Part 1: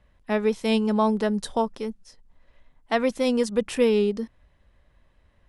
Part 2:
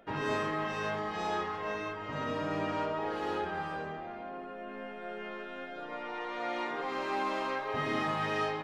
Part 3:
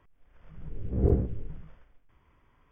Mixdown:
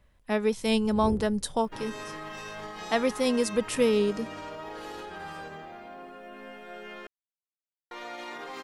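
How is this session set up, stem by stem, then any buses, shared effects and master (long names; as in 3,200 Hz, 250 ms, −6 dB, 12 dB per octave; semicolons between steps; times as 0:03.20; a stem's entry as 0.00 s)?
−3.0 dB, 0.00 s, no send, no processing
−2.5 dB, 1.65 s, muted 0:07.07–0:07.91, no send, brickwall limiter −30 dBFS, peak gain reduction 9 dB; high-shelf EQ 4,000 Hz +9 dB
−11.0 dB, 0.00 s, no send, no processing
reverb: not used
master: high-shelf EQ 5,900 Hz +9.5 dB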